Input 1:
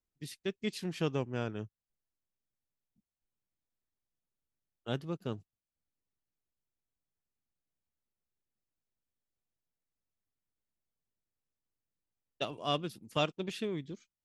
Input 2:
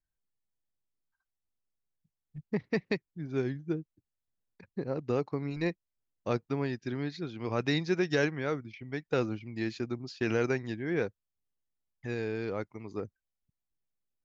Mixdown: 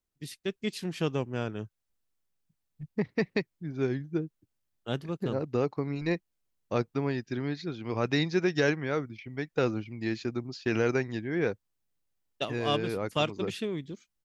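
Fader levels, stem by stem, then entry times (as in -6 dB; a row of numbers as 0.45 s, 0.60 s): +3.0 dB, +2.0 dB; 0.00 s, 0.45 s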